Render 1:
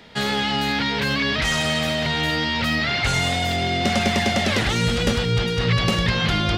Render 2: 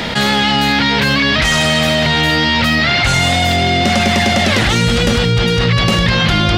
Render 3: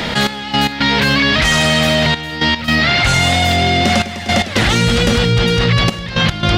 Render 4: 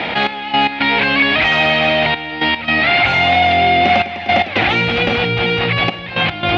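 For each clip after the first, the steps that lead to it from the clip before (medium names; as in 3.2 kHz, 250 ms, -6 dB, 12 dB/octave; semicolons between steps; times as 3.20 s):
band-stop 430 Hz, Q 12; level flattener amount 70%; trim +5 dB
trance gate "xx..x.xxxxxxxx" 112 bpm -12 dB; pre-echo 90 ms -21.5 dB
cabinet simulation 110–3700 Hz, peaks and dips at 140 Hz -8 dB, 220 Hz -5 dB, 310 Hz +4 dB, 760 Hz +10 dB, 2.4 kHz +9 dB; trim -2.5 dB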